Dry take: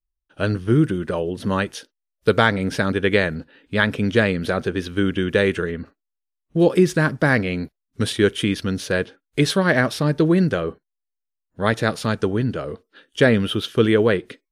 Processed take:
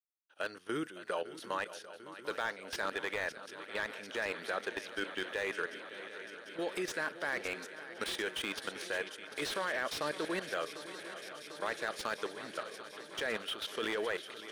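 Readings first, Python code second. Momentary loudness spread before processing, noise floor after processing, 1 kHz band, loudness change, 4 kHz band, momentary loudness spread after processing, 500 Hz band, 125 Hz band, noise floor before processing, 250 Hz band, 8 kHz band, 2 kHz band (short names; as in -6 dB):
10 LU, -52 dBFS, -12.5 dB, -17.5 dB, -11.5 dB, 9 LU, -18.0 dB, -34.5 dB, -82 dBFS, -24.5 dB, -10.5 dB, -13.0 dB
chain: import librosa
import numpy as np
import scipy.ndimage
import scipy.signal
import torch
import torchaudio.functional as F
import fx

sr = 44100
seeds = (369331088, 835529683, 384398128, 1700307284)

y = scipy.signal.sosfilt(scipy.signal.butter(2, 660.0, 'highpass', fs=sr, output='sos'), x)
y = fx.high_shelf(y, sr, hz=2800.0, db=3.0)
y = fx.level_steps(y, sr, step_db=15)
y = fx.echo_swing(y, sr, ms=746, ratio=3, feedback_pct=79, wet_db=-15.0)
y = fx.slew_limit(y, sr, full_power_hz=110.0)
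y = y * librosa.db_to_amplitude(-4.5)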